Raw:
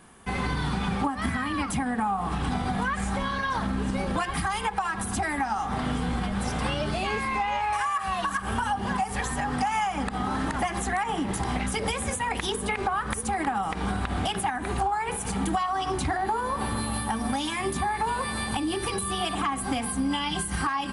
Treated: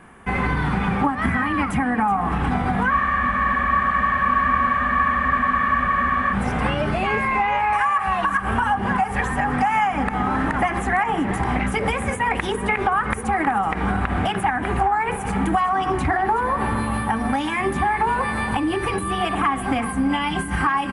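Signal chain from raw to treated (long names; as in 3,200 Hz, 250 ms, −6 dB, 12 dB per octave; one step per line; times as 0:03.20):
high shelf with overshoot 3,000 Hz −10.5 dB, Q 1.5
single-tap delay 375 ms −14.5 dB
frozen spectrum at 0:02.92, 3.41 s
level +6 dB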